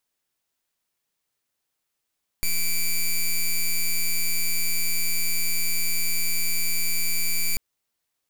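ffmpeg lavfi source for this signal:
-f lavfi -i "aevalsrc='0.0841*(2*lt(mod(2330*t,1),0.07)-1)':d=5.14:s=44100"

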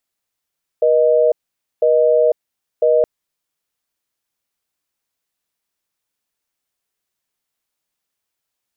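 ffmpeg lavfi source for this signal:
-f lavfi -i "aevalsrc='0.224*(sin(2*PI*480*t)+sin(2*PI*620*t))*clip(min(mod(t,1),0.5-mod(t,1))/0.005,0,1)':d=2.22:s=44100"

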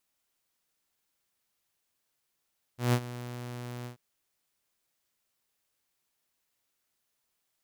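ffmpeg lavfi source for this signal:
-f lavfi -i "aevalsrc='0.119*(2*mod(122*t,1)-1)':d=1.187:s=44100,afade=t=in:d=0.152,afade=t=out:st=0.152:d=0.064:silence=0.15,afade=t=out:st=1.08:d=0.107"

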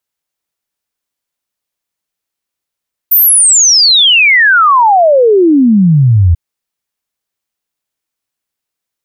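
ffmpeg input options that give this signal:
-f lavfi -i "aevalsrc='0.668*clip(min(t,3.24-t)/0.01,0,1)*sin(2*PI*15000*3.24/log(80/15000)*(exp(log(80/15000)*t/3.24)-1))':d=3.24:s=44100"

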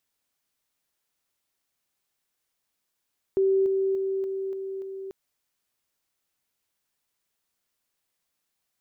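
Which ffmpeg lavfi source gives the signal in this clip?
-f lavfi -i "aevalsrc='pow(10,(-18.5-3*floor(t/0.29))/20)*sin(2*PI*386*t)':d=1.74:s=44100"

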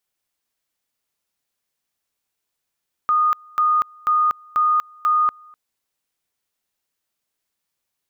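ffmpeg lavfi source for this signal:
-f lavfi -i "aevalsrc='pow(10,(-14-28.5*gte(mod(t,0.49),0.24))/20)*sin(2*PI*1230*t)':d=2.45:s=44100"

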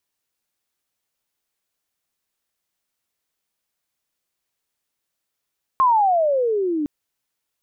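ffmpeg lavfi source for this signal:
-f lavfi -i "aevalsrc='pow(10,(-12-8*t/1.06)/20)*sin(2*PI*1080*1.06/(-23*log(2)/12)*(exp(-23*log(2)/12*t/1.06)-1))':d=1.06:s=44100"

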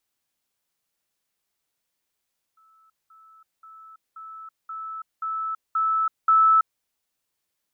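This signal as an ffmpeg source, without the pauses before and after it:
-f lavfi -i "aevalsrc='pow(10,(-55.5+6*floor(t/0.53))/20)*sin(2*PI*1310*t)*clip(min(mod(t,0.53),0.33-mod(t,0.53))/0.005,0,1)':d=4.24:s=44100"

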